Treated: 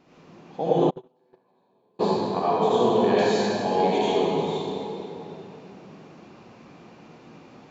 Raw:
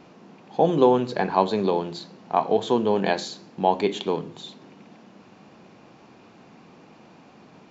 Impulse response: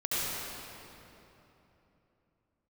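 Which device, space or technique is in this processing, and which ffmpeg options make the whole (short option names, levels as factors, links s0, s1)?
swimming-pool hall: -filter_complex "[1:a]atrim=start_sample=2205[s0];[0:a][s0]afir=irnorm=-1:irlink=0,highshelf=f=5500:g=-5,asplit=3[s1][s2][s3];[s1]afade=t=out:st=0.89:d=0.02[s4];[s2]agate=range=0.00501:threshold=0.631:ratio=16:detection=peak,afade=t=in:st=0.89:d=0.02,afade=t=out:st=1.99:d=0.02[s5];[s3]afade=t=in:st=1.99:d=0.02[s6];[s4][s5][s6]amix=inputs=3:normalize=0,highshelf=f=6000:g=7.5,volume=0.422"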